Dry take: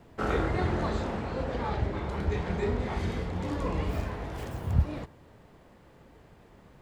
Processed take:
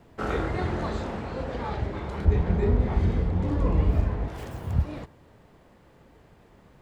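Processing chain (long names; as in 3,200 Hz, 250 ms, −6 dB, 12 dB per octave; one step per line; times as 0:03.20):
0:02.25–0:04.28: spectral tilt −2.5 dB per octave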